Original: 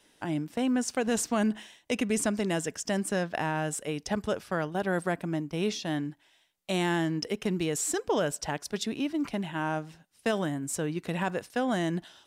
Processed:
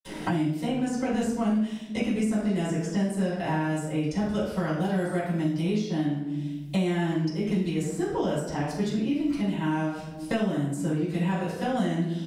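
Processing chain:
double-tracking delay 42 ms −12 dB
convolution reverb RT60 0.80 s, pre-delay 46 ms
multiband upward and downward compressor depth 100%
level −2 dB

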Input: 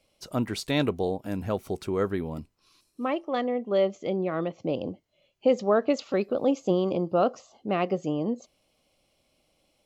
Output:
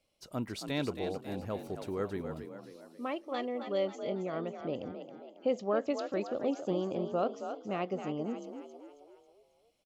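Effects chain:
0:02.38–0:03.99: high-shelf EQ 4,200 Hz +9 dB
on a send: echo with shifted repeats 272 ms, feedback 48%, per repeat +45 Hz, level −8.5 dB
on the sum: level −8.5 dB

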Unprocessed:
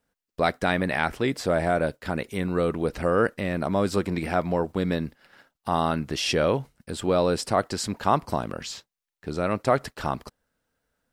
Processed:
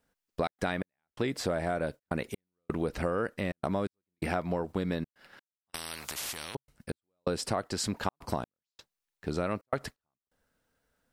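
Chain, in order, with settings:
gate pattern "xxxx.xx...xxx" 128 BPM −60 dB
downward compressor 6 to 1, threshold −27 dBFS, peak gain reduction 11 dB
0:05.69–0:06.55: every bin compressed towards the loudest bin 10 to 1

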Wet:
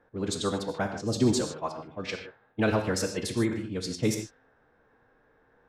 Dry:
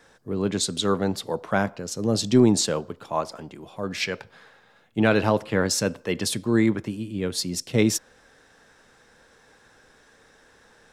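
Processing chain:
reverb whose tail is shaped and stops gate 320 ms flat, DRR 5 dB
low-pass that shuts in the quiet parts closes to 1,300 Hz, open at −20 dBFS
phase-vocoder stretch with locked phases 0.52×
level −5 dB

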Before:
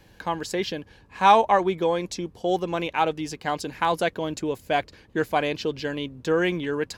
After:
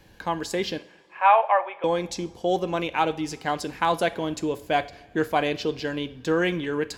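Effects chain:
0:00.78–0:01.84: elliptic band-pass filter 570–2,700 Hz, stop band 40 dB
coupled-rooms reverb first 0.49 s, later 2.3 s, from −18 dB, DRR 12.5 dB

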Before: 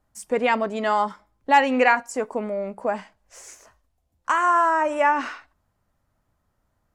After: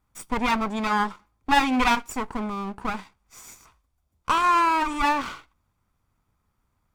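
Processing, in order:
lower of the sound and its delayed copy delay 0.86 ms

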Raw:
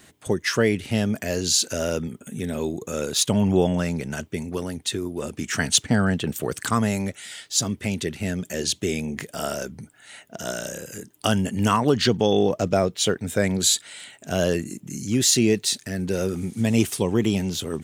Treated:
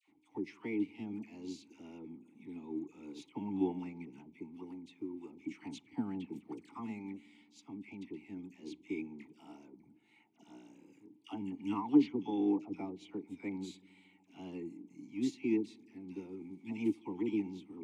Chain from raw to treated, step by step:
mu-law and A-law mismatch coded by mu
formant filter u
all-pass dispersion lows, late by 80 ms, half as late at 1,100 Hz
on a send: delay with a low-pass on its return 75 ms, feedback 82%, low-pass 420 Hz, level −18.5 dB
on the sum: expander for the loud parts 1.5 to 1, over −44 dBFS
level +1 dB

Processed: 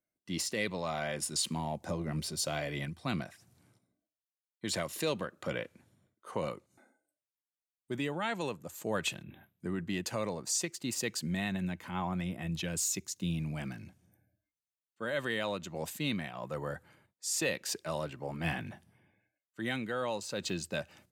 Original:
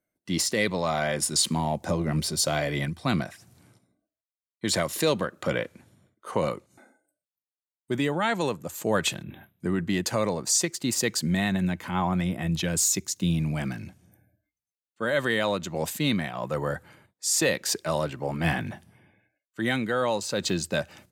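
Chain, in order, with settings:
dynamic equaliser 2,700 Hz, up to +5 dB, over −47 dBFS, Q 4.3
level −9 dB

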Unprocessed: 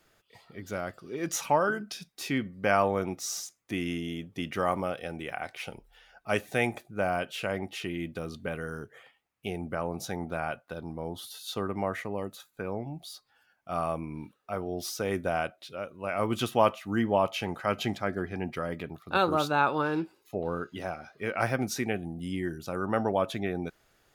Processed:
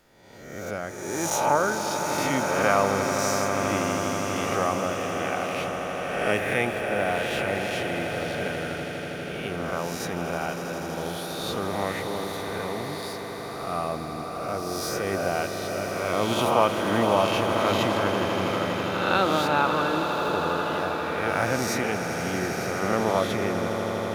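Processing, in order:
peak hold with a rise ahead of every peak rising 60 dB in 1.11 s
echo that builds up and dies away 81 ms, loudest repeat 8, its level −12.5 dB

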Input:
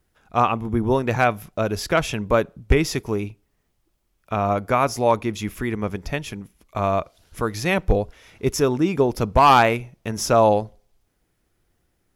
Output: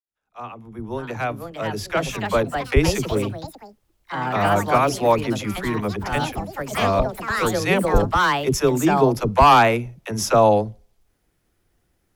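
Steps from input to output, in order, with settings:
fade in at the beginning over 3.07 s
all-pass dispersion lows, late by 61 ms, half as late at 320 Hz
delay with pitch and tempo change per echo 686 ms, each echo +4 semitones, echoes 3, each echo −6 dB
level +1 dB

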